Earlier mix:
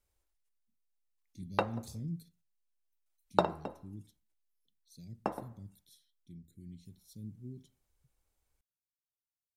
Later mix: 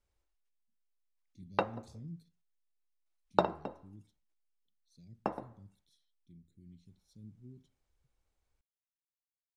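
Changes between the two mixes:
speech -6.5 dB; master: add air absorption 64 m

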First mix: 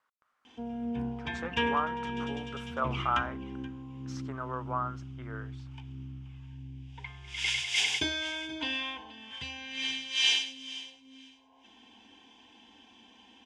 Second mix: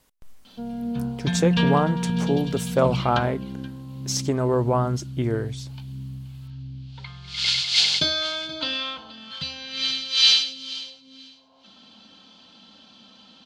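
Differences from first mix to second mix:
speech: remove band-pass 1300 Hz, Q 3.8; background: remove fixed phaser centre 870 Hz, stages 8

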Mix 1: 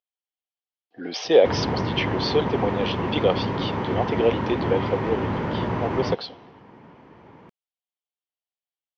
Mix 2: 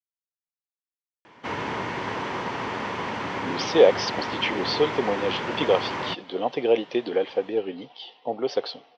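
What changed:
speech: entry +2.45 s; background: add tilt +4 dB/oct

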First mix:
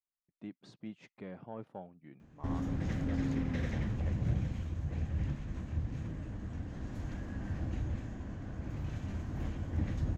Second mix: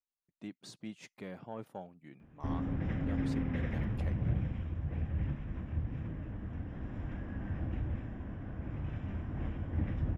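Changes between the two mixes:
speech: remove tape spacing loss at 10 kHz 21 dB; background: add polynomial smoothing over 25 samples

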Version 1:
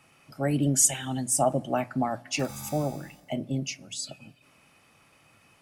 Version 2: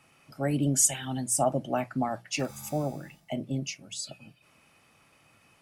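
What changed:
background -5.5 dB; reverb: off

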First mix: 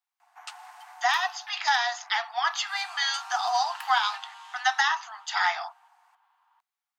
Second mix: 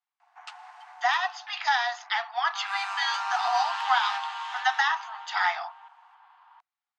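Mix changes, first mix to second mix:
second sound +12.0 dB; master: add Bessel low-pass 3900 Hz, order 2

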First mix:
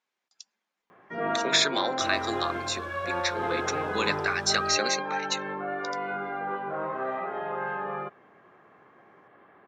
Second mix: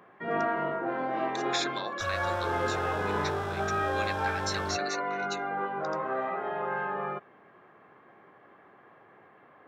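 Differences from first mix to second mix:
speech -9.5 dB; first sound: entry -0.90 s; second sound +6.0 dB

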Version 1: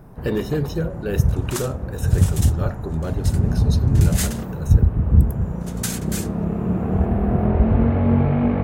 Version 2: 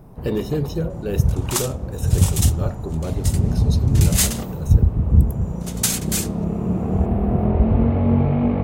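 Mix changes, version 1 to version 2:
second sound +7.5 dB; master: add bell 1600 Hz -7.5 dB 0.62 oct

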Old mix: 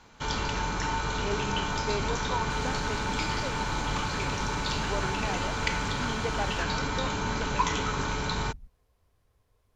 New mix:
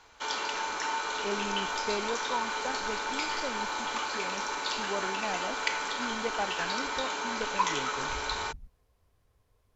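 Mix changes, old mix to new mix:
first sound: add Bessel high-pass 490 Hz, order 4; second sound -12.0 dB

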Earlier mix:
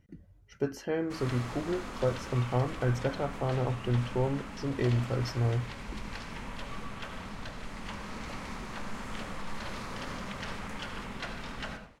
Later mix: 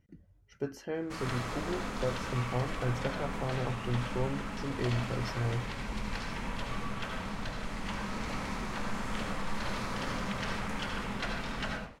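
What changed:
speech -4.5 dB; background: send +7.0 dB

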